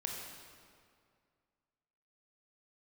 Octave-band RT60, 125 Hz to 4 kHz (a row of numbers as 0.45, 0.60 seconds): 2.3, 2.3, 2.2, 2.1, 1.9, 1.6 seconds